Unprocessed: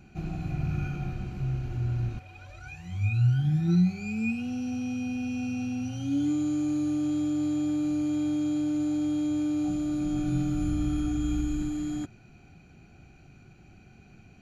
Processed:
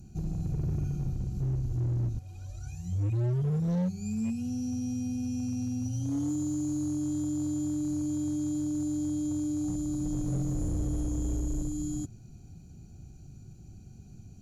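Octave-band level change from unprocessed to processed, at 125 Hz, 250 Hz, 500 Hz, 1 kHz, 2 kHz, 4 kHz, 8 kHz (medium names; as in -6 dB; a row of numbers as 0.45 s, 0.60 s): -1.5 dB, -3.5 dB, -1.5 dB, -7.0 dB, under -15 dB, no reading, +4.5 dB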